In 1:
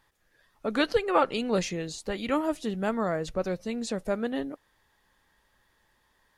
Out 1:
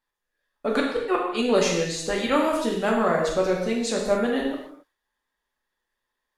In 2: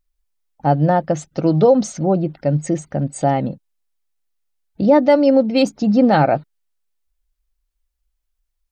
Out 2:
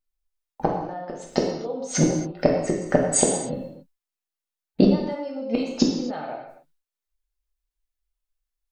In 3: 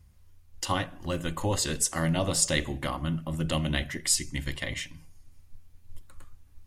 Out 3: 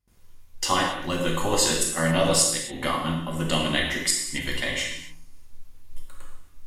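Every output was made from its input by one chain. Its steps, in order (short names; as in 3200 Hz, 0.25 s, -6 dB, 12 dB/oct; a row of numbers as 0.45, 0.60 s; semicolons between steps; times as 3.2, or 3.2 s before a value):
gate with hold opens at -49 dBFS; dynamic EQ 190 Hz, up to -3 dB, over -31 dBFS, Q 2.7; flipped gate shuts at -13 dBFS, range -31 dB; bell 86 Hz -12.5 dB 1.9 oct; non-linear reverb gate 0.3 s falling, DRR -1.5 dB; match loudness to -24 LUFS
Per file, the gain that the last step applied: +4.5, +10.5, +4.0 dB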